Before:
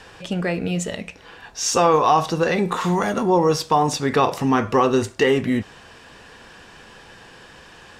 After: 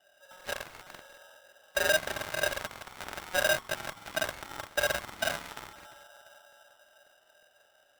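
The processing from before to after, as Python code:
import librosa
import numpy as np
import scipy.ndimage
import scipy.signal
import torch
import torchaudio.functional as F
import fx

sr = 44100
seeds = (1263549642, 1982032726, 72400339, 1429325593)

y = np.where(x < 0.0, 10.0 ** (-3.0 / 20.0) * x, x)
y = fx.comb_fb(y, sr, f0_hz=120.0, decay_s=0.36, harmonics='all', damping=0.0, mix_pct=50)
y = fx.echo_feedback(y, sr, ms=346, feedback_pct=59, wet_db=-14.5)
y = fx.room_shoebox(y, sr, seeds[0], volume_m3=1800.0, walls='mixed', distance_m=1.7)
y = 10.0 ** (-15.0 / 20.0) * np.tanh(y / 10.0 ** (-15.0 / 20.0))
y = fx.formant_cascade(y, sr, vowel='e')
y = fx.peak_eq(y, sr, hz=70.0, db=-9.0, octaves=1.6)
y = fx.cheby_harmonics(y, sr, harmonics=(7,), levels_db=(-14,), full_scale_db=-20.5)
y = fx.peak_eq(y, sr, hz=260.0, db=7.5, octaves=1.8)
y = fx.buffer_crackle(y, sr, first_s=0.36, period_s=0.18, block=2048, kind='repeat')
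y = y * np.sign(np.sin(2.0 * np.pi * 1100.0 * np.arange(len(y)) / sr))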